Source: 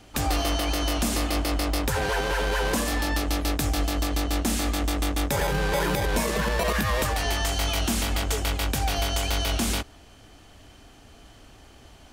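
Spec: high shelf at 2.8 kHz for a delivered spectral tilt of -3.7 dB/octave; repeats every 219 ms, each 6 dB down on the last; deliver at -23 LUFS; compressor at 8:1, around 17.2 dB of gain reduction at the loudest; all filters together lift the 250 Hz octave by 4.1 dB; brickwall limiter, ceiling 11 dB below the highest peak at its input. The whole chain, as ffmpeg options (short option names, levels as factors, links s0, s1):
-af "equalizer=f=250:t=o:g=5,highshelf=f=2800:g=7,acompressor=threshold=0.0158:ratio=8,alimiter=level_in=2.11:limit=0.0631:level=0:latency=1,volume=0.473,aecho=1:1:219|438|657|876|1095|1314:0.501|0.251|0.125|0.0626|0.0313|0.0157,volume=5.96"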